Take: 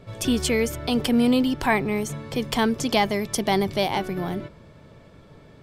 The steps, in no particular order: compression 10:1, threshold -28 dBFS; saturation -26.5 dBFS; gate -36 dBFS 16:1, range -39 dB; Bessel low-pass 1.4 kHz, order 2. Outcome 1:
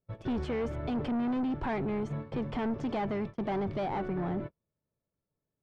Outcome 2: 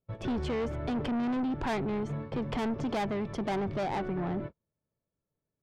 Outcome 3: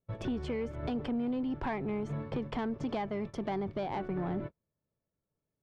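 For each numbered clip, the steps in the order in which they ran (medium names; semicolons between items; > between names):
saturation > compression > Bessel low-pass > gate; Bessel low-pass > gate > saturation > compression; compression > gate > Bessel low-pass > saturation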